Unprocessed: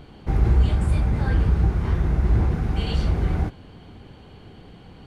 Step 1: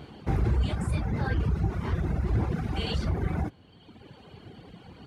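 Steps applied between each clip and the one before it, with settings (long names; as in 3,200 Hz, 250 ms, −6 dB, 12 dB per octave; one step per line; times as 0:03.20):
in parallel at +3 dB: brickwall limiter −17.5 dBFS, peak gain reduction 9.5 dB
on the sum: reverb reduction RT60 1.6 s
high-pass filter 73 Hz
level −6 dB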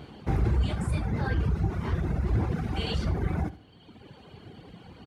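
repeating echo 74 ms, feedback 34%, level −16 dB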